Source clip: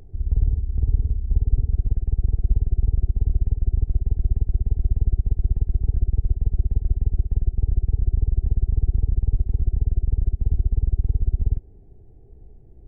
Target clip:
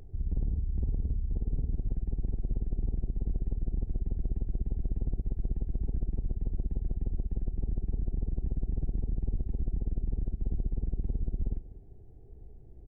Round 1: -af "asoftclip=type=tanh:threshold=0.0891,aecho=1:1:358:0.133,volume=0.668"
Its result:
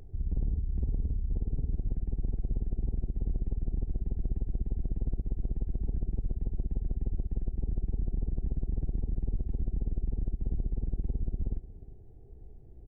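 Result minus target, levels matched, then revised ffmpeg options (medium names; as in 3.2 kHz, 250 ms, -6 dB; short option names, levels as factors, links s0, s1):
echo 165 ms late
-af "asoftclip=type=tanh:threshold=0.0891,aecho=1:1:193:0.133,volume=0.668"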